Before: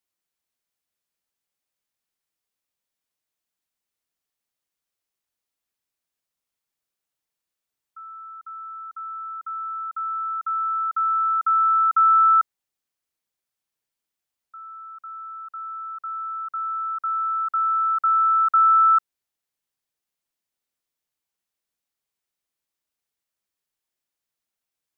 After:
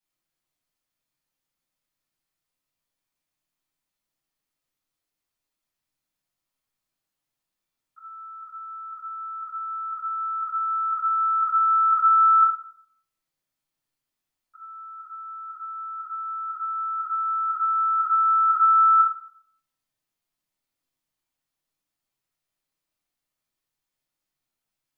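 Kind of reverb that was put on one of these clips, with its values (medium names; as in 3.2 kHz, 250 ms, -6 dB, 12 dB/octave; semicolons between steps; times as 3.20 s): simulated room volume 950 m³, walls furnished, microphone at 8.7 m; trim -8 dB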